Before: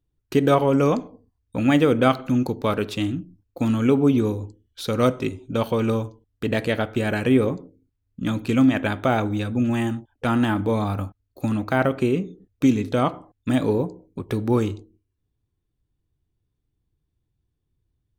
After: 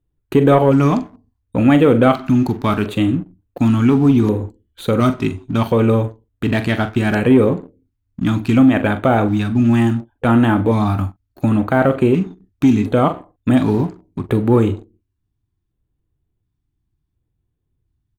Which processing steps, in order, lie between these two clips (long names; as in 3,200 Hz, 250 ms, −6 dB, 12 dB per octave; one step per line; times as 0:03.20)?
high-shelf EQ 2,200 Hz −6.5 dB
double-tracking delay 43 ms −12 dB
leveller curve on the samples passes 1
auto-filter notch square 0.7 Hz 500–5,300 Hz
in parallel at −2 dB: brickwall limiter −12.5 dBFS, peak gain reduction 8.5 dB